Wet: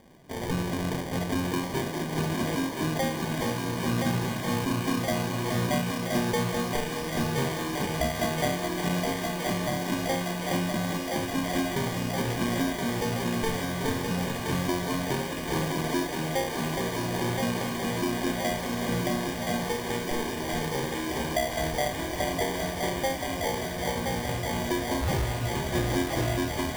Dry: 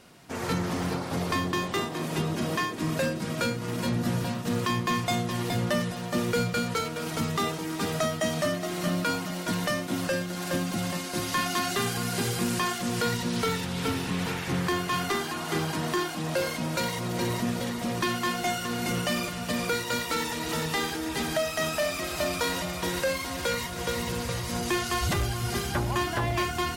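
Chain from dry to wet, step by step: FFT band-reject 1400–8400 Hz; sample-and-hold 33×; thinning echo 1.022 s, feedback 81%, high-pass 390 Hz, level -3.5 dB

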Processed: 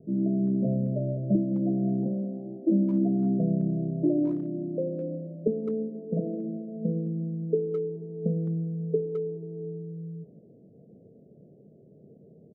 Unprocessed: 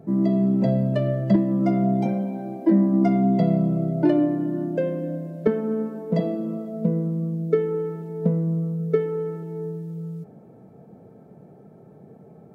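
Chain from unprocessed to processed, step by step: steep low-pass 600 Hz 48 dB/oct; notches 60/120/180 Hz; speakerphone echo 0.21 s, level -12 dB; gain -5.5 dB

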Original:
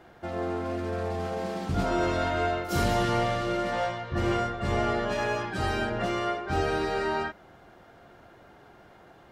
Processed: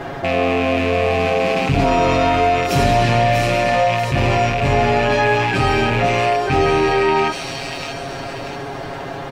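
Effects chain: rattling part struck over -39 dBFS, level -25 dBFS; high shelf 7800 Hz -10 dB; notch 1400 Hz, Q 21; comb 7.3 ms, depth 86%; on a send: thin delay 0.639 s, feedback 38%, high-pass 4800 Hz, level -5 dB; on the sum: fast leveller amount 50%; gain +8 dB

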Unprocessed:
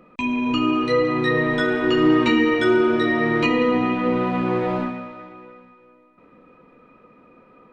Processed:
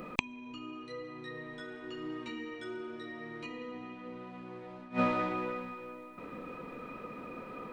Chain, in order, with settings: high shelf 5100 Hz +11 dB; flipped gate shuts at -16 dBFS, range -31 dB; gain +6.5 dB

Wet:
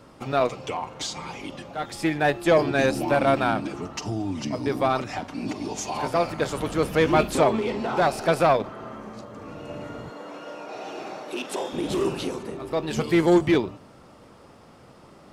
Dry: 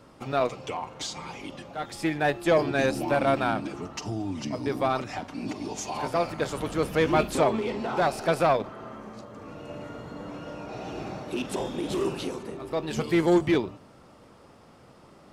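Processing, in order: 10.1–11.73 HPF 380 Hz 12 dB/oct; gain +3 dB

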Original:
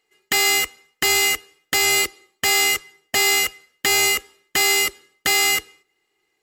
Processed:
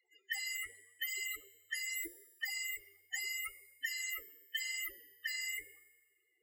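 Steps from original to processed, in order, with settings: de-hum 50.31 Hz, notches 23; harmonic-percussive split harmonic -15 dB; high shelf 5800 Hz +5.5 dB; loudest bins only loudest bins 8; in parallel at -7.5 dB: hard clip -32 dBFS, distortion -10 dB; on the sum: resonator 93 Hz, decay 1.1 s, harmonics odd, mix 70%; flange 0.82 Hz, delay 4.8 ms, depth 7 ms, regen +38%; three-band squash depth 40%; gain +5.5 dB

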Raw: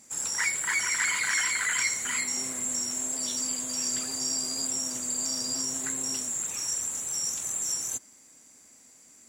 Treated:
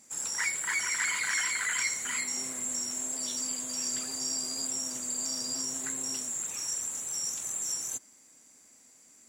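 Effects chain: low shelf 90 Hz -6.5 dB; gain -3 dB

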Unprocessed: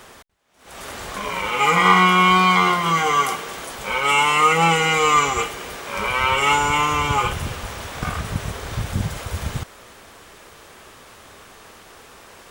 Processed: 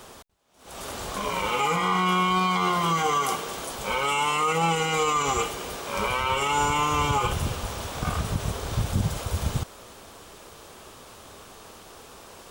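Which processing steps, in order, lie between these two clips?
limiter -13.5 dBFS, peak gain reduction 10.5 dB; bell 1900 Hz -7.5 dB 0.9 oct

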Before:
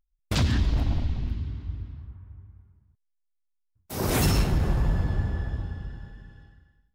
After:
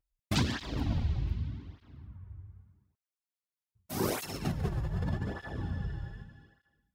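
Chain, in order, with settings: 4.09–6.24 negative-ratio compressor -28 dBFS, ratio -1; tape flanging out of phase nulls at 0.83 Hz, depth 4.7 ms

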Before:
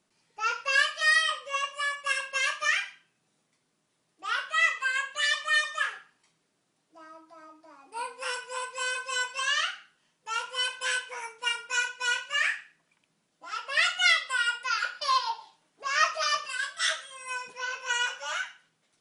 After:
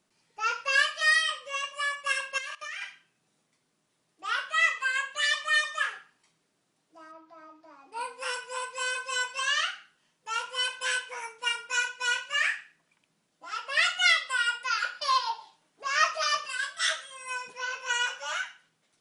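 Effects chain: 1.15–1.72 dynamic EQ 850 Hz, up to -7 dB, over -43 dBFS, Q 1.2; 2.38–2.82 level quantiser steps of 19 dB; 7.11–7.99 LPF 3800 Hz -> 6900 Hz 12 dB/oct

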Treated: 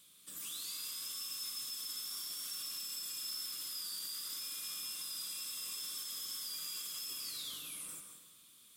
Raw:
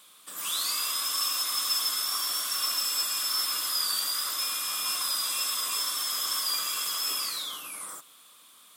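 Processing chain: passive tone stack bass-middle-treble 10-0-1; limiter -48.5 dBFS, peak gain reduction 11 dB; plate-style reverb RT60 1 s, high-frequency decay 0.85×, pre-delay 0.12 s, DRR 5.5 dB; gain +14 dB

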